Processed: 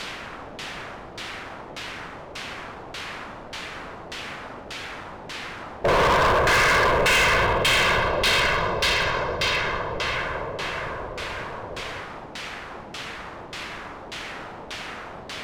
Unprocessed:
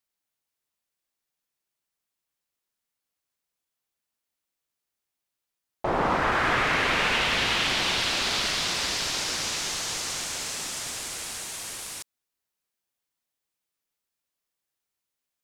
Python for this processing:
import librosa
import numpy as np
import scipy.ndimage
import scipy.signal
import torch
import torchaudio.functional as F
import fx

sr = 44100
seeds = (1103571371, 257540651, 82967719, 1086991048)

y = fx.env_lowpass(x, sr, base_hz=350.0, full_db=-23.0)
y = y + 0.8 * np.pad(y, (int(1.9 * sr / 1000.0), 0))[:len(y)]
y = fx.quant_dither(y, sr, seeds[0], bits=6, dither='triangular')
y = fx.filter_lfo_lowpass(y, sr, shape='saw_down', hz=1.7, low_hz=640.0, high_hz=3700.0, q=1.1)
y = np.clip(10.0 ** (25.0 / 20.0) * y, -1.0, 1.0) / 10.0 ** (25.0 / 20.0)
y = y * 10.0 ** (8.5 / 20.0)